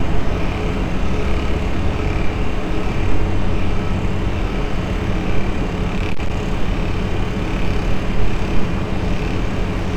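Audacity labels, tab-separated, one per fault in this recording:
5.830000	6.360000	clipping −13 dBFS

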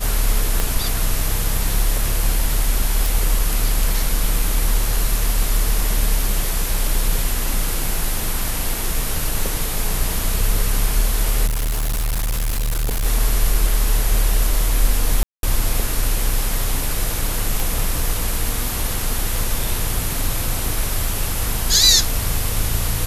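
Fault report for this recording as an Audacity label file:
0.600000	0.600000	click −6 dBFS
3.060000	3.060000	click
11.460000	13.060000	clipping −17.5 dBFS
15.230000	15.430000	drop-out 202 ms
17.600000	17.600000	click

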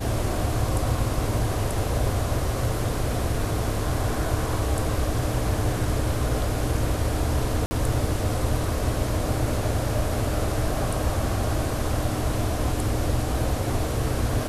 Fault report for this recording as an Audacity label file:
7.660000	7.710000	drop-out 50 ms

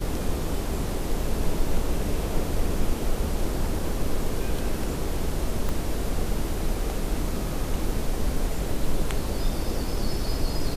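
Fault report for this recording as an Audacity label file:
5.690000	5.690000	click

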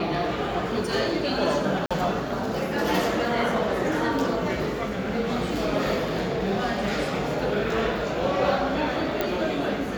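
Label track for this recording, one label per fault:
1.860000	1.910000	drop-out 46 ms
9.210000	9.210000	click −11 dBFS

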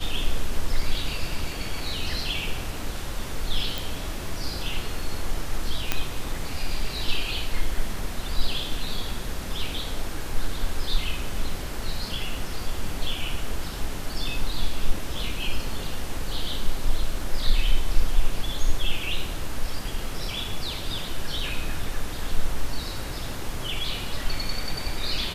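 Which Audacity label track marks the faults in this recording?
3.780000	3.780000	click
5.920000	5.920000	click −6 dBFS

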